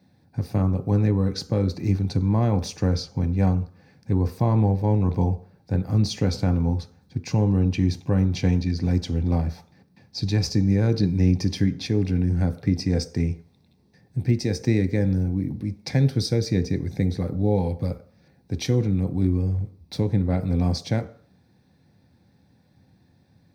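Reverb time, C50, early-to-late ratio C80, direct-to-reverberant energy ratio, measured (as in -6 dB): 0.50 s, 16.5 dB, 19.5 dB, 8.5 dB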